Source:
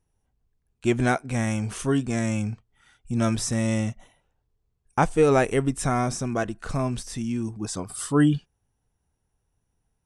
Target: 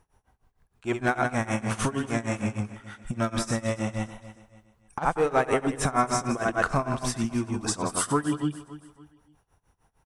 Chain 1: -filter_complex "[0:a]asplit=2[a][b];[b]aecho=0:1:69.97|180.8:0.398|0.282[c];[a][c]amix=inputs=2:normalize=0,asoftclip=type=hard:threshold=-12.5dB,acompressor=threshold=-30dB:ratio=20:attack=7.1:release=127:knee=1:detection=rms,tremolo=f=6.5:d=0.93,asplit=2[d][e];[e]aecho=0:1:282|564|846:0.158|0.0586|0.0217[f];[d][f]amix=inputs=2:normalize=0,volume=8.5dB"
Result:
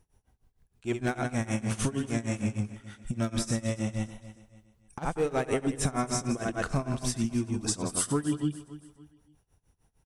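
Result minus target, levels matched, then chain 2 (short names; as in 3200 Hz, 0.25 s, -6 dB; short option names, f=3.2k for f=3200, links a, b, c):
1000 Hz band -6.0 dB
-filter_complex "[0:a]asplit=2[a][b];[b]aecho=0:1:69.97|180.8:0.398|0.282[c];[a][c]amix=inputs=2:normalize=0,asoftclip=type=hard:threshold=-12.5dB,acompressor=threshold=-30dB:ratio=20:attack=7.1:release=127:knee=1:detection=rms,equalizer=f=1.1k:t=o:w=2:g=10.5,tremolo=f=6.5:d=0.93,asplit=2[d][e];[e]aecho=0:1:282|564|846:0.158|0.0586|0.0217[f];[d][f]amix=inputs=2:normalize=0,volume=8.5dB"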